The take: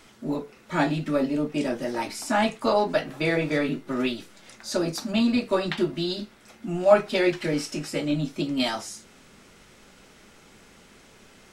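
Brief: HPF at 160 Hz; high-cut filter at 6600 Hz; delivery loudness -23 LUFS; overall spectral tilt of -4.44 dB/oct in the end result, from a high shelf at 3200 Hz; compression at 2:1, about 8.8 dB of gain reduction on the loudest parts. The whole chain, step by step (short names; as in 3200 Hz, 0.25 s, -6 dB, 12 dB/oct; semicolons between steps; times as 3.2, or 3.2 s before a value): HPF 160 Hz; LPF 6600 Hz; high shelf 3200 Hz -6 dB; compressor 2:1, threshold -28 dBFS; gain +8 dB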